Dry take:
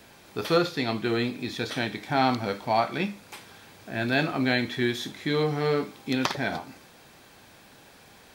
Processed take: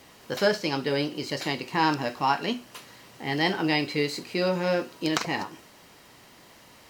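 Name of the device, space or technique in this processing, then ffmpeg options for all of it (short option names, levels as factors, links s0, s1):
nightcore: -af "asetrate=53361,aresample=44100"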